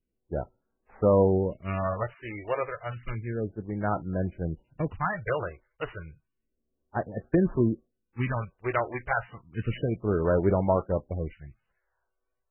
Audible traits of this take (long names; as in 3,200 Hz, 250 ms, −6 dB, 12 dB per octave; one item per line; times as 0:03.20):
a buzz of ramps at a fixed pitch in blocks of 8 samples
phaser sweep stages 2, 0.31 Hz, lowest notch 180–3,500 Hz
MP3